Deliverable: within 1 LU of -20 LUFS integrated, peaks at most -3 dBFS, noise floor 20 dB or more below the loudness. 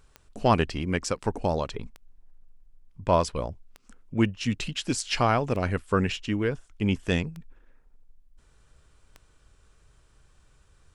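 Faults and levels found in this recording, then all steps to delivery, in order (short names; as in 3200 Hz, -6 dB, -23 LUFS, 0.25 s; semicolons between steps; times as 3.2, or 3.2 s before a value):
clicks 6; loudness -27.5 LUFS; peak -8.5 dBFS; loudness target -20.0 LUFS
-> de-click; gain +7.5 dB; limiter -3 dBFS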